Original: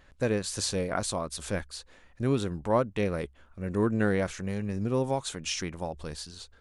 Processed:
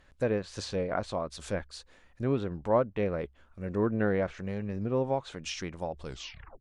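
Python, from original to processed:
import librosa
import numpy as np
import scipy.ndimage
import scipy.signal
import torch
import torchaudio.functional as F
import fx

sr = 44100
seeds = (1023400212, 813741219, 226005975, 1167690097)

y = fx.tape_stop_end(x, sr, length_s=0.56)
y = fx.dynamic_eq(y, sr, hz=590.0, q=1.4, threshold_db=-41.0, ratio=4.0, max_db=4)
y = fx.env_lowpass_down(y, sr, base_hz=2700.0, full_db=-25.0)
y = y * librosa.db_to_amplitude(-3.0)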